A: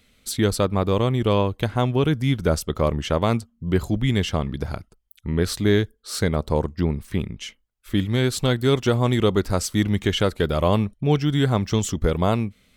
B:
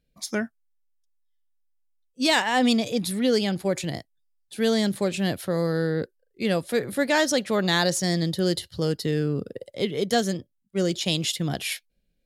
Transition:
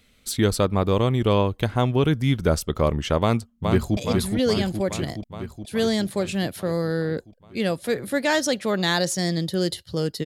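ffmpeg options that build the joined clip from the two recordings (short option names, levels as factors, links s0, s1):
-filter_complex "[0:a]apad=whole_dur=10.25,atrim=end=10.25,atrim=end=3.972[s0];[1:a]atrim=start=2.818:end=9.1[s1];[s0][s1]acrossfade=d=0.004:c1=hsin:c2=hsin,asplit=2[s2][s3];[s3]afade=t=in:st=3.2:d=0.01,afade=t=out:st=3.97:d=0.01,aecho=0:1:420|840|1260|1680|2100|2520|2940|3360|3780|4200|4620|5040:0.595662|0.416964|0.291874|0.204312|0.143018|0.100113|0.0700791|0.0490553|0.0343387|0.0240371|0.016826|0.0117782[s4];[s2][s4]amix=inputs=2:normalize=0"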